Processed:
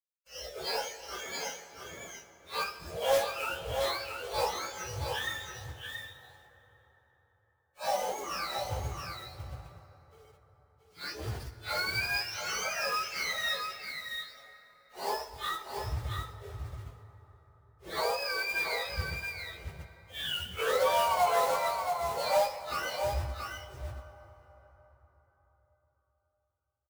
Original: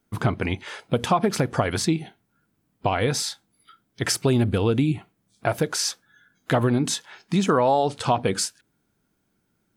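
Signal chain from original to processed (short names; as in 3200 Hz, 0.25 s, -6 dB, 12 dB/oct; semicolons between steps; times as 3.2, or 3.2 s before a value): spectrum mirrored in octaves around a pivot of 1000 Hz; reverb removal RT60 0.98 s; resonant low shelf 630 Hz -11.5 dB, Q 3; wide varispeed 0.581×; companded quantiser 4-bit; plain phase-vocoder stretch 1.6×; echo 0.677 s -6 dB; plate-style reverb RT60 4.6 s, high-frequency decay 0.5×, DRR 11 dB; gain -5.5 dB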